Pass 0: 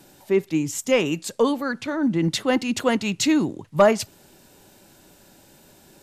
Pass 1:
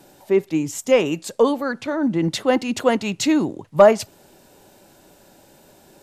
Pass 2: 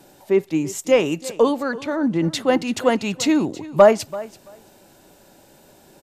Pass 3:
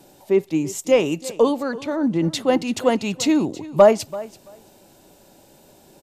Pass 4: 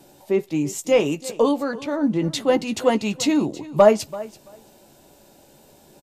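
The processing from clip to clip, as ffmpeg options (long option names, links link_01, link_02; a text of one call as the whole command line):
ffmpeg -i in.wav -af "equalizer=frequency=620:width_type=o:width=1.7:gain=6,volume=-1dB" out.wav
ffmpeg -i in.wav -af "aecho=1:1:335|670:0.126|0.0189" out.wav
ffmpeg -i in.wav -af "equalizer=frequency=1600:width=1.6:gain=-5" out.wav
ffmpeg -i in.wav -filter_complex "[0:a]asplit=2[link_01][link_02];[link_02]adelay=14,volume=-8.5dB[link_03];[link_01][link_03]amix=inputs=2:normalize=0,volume=-1dB" out.wav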